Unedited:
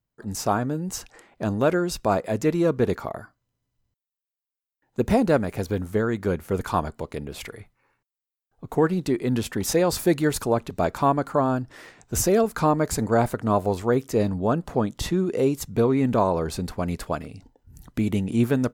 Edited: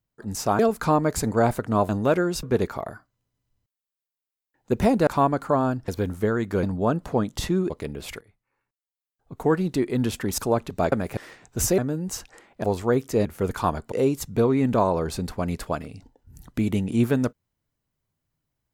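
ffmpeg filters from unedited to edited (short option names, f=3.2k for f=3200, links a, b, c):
-filter_complex "[0:a]asplit=16[a][b][c][d][e][f][g][h][i][j][k][l][m][n][o][p];[a]atrim=end=0.592[q];[b]atrim=start=12.338:end=13.642[r];[c]atrim=start=1.448:end=1.992[s];[d]atrim=start=2.708:end=5.352[t];[e]atrim=start=10.918:end=11.732[u];[f]atrim=start=5.598:end=6.352[v];[g]atrim=start=14.248:end=15.322[w];[h]atrim=start=7.018:end=7.53,asetpts=PTS-STARTPTS,afade=t=out:st=0.508:d=0.004:c=hsin:silence=0.112202[x];[i]atrim=start=7.53:end=9.702,asetpts=PTS-STARTPTS,afade=t=in:d=1.42:silence=0.112202[y];[j]atrim=start=10.378:end=10.922[z];[k]atrim=start=5.348:end=5.602[aa];[l]atrim=start=11.728:end=12.342[ab];[m]atrim=start=0.588:end=1.452[ac];[n]atrim=start=13.638:end=14.252[ad];[o]atrim=start=6.348:end=7.022[ae];[p]atrim=start=15.318[af];[q][r]acrossfade=d=0.004:c1=hsin:c2=hsin[ag];[ag][s]acrossfade=d=0.004:c1=hsin:c2=hsin[ah];[ah][t]acrossfade=d=0.004:c1=hsin:c2=hsin[ai];[ai][u]acrossfade=d=0.004:c1=hsin:c2=hsin[aj];[aj][v]acrossfade=d=0.004:c1=hsin:c2=hsin[ak];[ak][w]acrossfade=d=0.004:c1=hsin:c2=hsin[al];[x][y]concat=n=2:v=0:a=1[am];[al][am]acrossfade=d=0.004:c1=hsin:c2=hsin[an];[an][z]acrossfade=d=0.004:c1=hsin:c2=hsin[ao];[ao][aa]acrossfade=d=0.004:c1=hsin:c2=hsin[ap];[ap][ab]acrossfade=d=0.004:c1=hsin:c2=hsin[aq];[aq][ac]acrossfade=d=0.004:c1=hsin:c2=hsin[ar];[ar][ad]acrossfade=d=0.004:c1=hsin:c2=hsin[as];[as][ae]acrossfade=d=0.004:c1=hsin:c2=hsin[at];[at][af]acrossfade=d=0.004:c1=hsin:c2=hsin"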